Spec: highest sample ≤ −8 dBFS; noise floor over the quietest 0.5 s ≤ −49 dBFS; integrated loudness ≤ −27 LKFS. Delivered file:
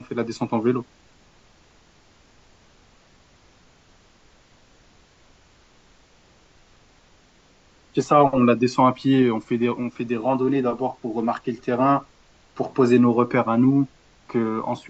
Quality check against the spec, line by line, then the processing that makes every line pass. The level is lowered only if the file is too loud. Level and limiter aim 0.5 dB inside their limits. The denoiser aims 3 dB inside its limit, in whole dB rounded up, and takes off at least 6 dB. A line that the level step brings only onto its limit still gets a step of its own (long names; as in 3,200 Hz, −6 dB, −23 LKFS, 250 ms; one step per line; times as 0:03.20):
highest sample −4.0 dBFS: out of spec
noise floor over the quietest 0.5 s −56 dBFS: in spec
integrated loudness −21.5 LKFS: out of spec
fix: level −6 dB